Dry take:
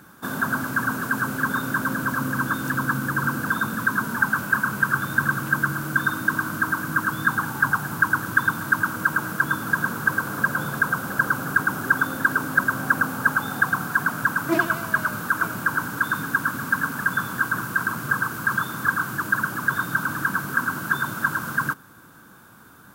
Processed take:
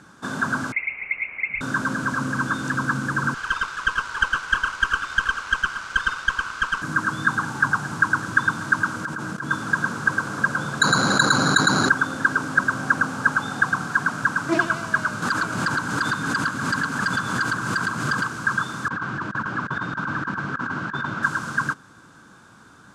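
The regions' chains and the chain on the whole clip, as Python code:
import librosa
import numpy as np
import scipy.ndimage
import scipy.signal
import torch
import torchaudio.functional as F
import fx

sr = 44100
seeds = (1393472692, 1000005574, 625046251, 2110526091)

y = fx.chain(x, sr, fx.cheby2_highpass(hz=420.0, order=4, stop_db=60),
    fx.freq_invert(carrier_hz=3700), at=(0.72, 1.61))
y = fx.chain(y, sr, fx.steep_highpass(hz=900.0, slope=36),
    fx.running_max(window=5), at=(3.34, 6.82))
y = fx.chain(y, sr, fx.peak_eq(hz=220.0, db=4.5, octaves=2.2),
    fx.level_steps(step_db=15), at=(9.05, 9.51))
y = fx.chain(y, sr, fx.highpass(hz=110.0, slope=12),
    fx.resample_bad(factor=8, down='filtered', up='hold'),
    fx.env_flatten(amount_pct=70), at=(10.81, 11.89))
y = fx.chain(y, sr, fx.notch(hz=5600.0, q=27.0),
    fx.overload_stage(gain_db=18.0),
    fx.pre_swell(db_per_s=41.0), at=(15.22, 18.29))
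y = fx.chain(y, sr, fx.lowpass(hz=3000.0, slope=12),
    fx.over_compress(threshold_db=-26.0, ratio=-0.5), at=(18.88, 21.23))
y = scipy.signal.sosfilt(scipy.signal.butter(4, 7500.0, 'lowpass', fs=sr, output='sos'), y)
y = fx.high_shelf(y, sr, hz=5000.0, db=6.0)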